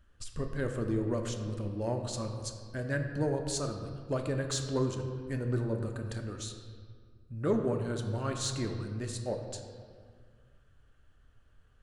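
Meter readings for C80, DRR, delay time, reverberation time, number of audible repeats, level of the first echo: 7.5 dB, 4.0 dB, no echo, 1.9 s, no echo, no echo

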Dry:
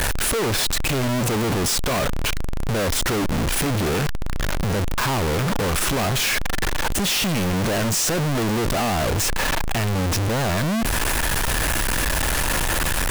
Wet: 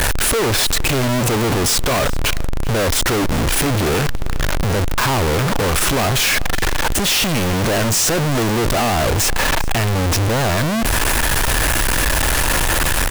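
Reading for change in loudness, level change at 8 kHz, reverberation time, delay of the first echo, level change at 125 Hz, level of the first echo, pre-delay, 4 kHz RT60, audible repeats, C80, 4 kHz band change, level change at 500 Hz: +4.5 dB, +5.0 dB, no reverb, 391 ms, +4.5 dB, -21.0 dB, no reverb, no reverb, 1, no reverb, +5.0 dB, +5.0 dB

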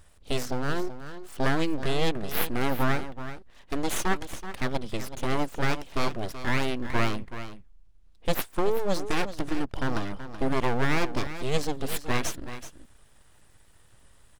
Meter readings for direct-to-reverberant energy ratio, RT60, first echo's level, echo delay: no reverb, no reverb, -12.0 dB, 378 ms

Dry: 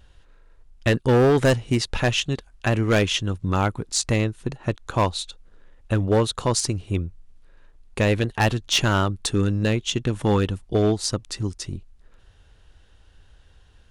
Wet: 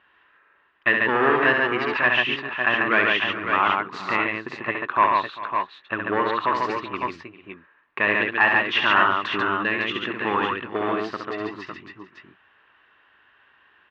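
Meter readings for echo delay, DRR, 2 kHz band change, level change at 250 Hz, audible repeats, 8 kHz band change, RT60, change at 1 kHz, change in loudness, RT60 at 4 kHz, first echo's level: 68 ms, no reverb, +10.0 dB, -5.5 dB, 5, under -25 dB, no reverb, +7.5 dB, +1.0 dB, no reverb, -5.0 dB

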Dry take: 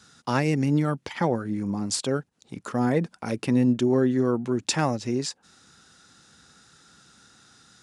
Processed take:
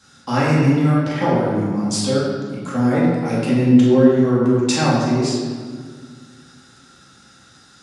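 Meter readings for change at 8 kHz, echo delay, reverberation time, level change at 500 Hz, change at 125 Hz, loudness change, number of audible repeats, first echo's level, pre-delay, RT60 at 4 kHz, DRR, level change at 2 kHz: +4.0 dB, no echo, 1.8 s, +8.0 dB, +9.0 dB, +8.0 dB, no echo, no echo, 4 ms, 1.2 s, -8.0 dB, +7.0 dB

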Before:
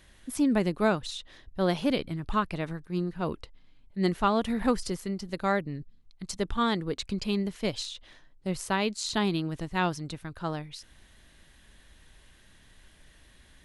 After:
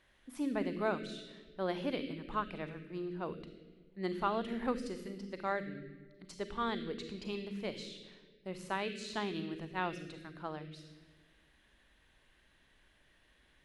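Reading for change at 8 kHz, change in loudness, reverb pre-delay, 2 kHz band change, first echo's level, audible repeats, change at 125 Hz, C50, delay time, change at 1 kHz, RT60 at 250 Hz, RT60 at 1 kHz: -16.0 dB, -9.0 dB, 31 ms, -7.5 dB, no echo, no echo, -12.5 dB, 8.0 dB, no echo, -7.5 dB, 1.7 s, 1.5 s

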